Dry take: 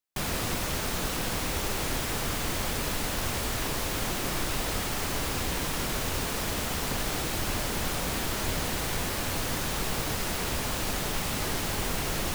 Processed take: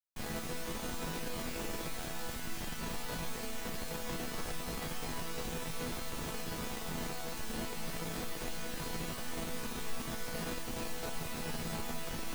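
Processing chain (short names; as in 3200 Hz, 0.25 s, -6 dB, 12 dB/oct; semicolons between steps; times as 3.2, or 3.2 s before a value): 2.24–2.79 bell 500 Hz -9.5 dB 0.71 oct; resonator bank E3 sus4, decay 0.56 s; in parallel at -3.5 dB: Schmitt trigger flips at -45 dBFS; on the sum: gain +7.5 dB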